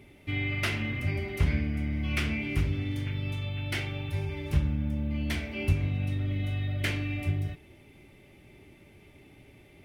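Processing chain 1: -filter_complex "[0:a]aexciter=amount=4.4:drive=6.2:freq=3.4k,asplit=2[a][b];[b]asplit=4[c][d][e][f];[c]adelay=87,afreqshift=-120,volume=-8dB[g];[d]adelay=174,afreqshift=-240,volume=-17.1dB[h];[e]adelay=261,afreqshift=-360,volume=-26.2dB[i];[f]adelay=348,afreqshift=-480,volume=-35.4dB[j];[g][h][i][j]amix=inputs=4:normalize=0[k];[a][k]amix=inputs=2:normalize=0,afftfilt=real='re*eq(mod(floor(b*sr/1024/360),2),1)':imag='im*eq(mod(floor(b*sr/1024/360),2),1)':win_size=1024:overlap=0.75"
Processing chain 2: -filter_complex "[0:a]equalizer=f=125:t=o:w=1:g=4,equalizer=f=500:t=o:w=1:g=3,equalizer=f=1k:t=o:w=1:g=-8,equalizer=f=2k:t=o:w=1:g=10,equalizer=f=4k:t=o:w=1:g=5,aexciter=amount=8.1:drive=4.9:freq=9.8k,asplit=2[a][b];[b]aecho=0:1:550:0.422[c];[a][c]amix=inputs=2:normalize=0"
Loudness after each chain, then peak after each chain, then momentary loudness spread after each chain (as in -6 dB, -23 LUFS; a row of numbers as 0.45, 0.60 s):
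-34.5, -25.5 LUFS; -13.0, -7.0 dBFS; 23, 6 LU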